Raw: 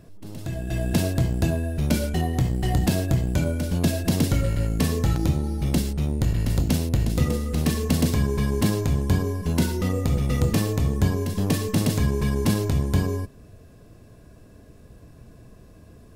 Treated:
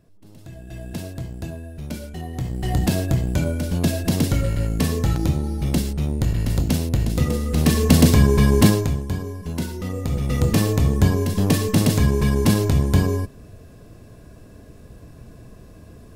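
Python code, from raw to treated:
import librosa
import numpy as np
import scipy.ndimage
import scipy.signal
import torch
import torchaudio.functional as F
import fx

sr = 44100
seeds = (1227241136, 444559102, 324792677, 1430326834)

y = fx.gain(x, sr, db=fx.line((2.15, -9.0), (2.79, 1.5), (7.27, 1.5), (7.94, 8.0), (8.66, 8.0), (9.06, -4.5), (9.81, -4.5), (10.63, 4.5)))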